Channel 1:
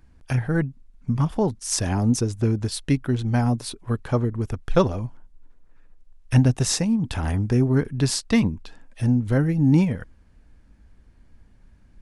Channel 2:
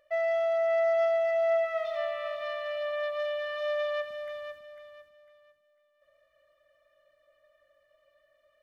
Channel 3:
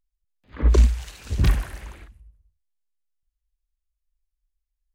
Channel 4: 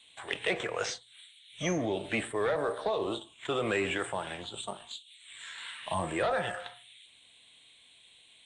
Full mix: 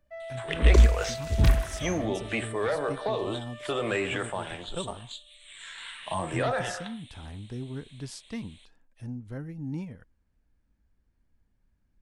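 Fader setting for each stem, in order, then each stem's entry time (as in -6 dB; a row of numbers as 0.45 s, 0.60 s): -17.5 dB, -12.0 dB, -1.5 dB, +1.0 dB; 0.00 s, 0.00 s, 0.00 s, 0.20 s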